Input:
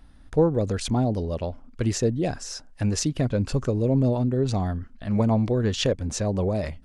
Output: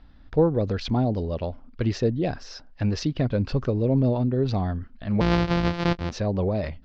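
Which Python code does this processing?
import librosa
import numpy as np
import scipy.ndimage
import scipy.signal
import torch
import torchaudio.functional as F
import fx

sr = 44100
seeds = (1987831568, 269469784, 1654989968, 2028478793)

y = fx.sample_sort(x, sr, block=256, at=(5.2, 6.1), fade=0.02)
y = scipy.signal.sosfilt(scipy.signal.butter(6, 5000.0, 'lowpass', fs=sr, output='sos'), y)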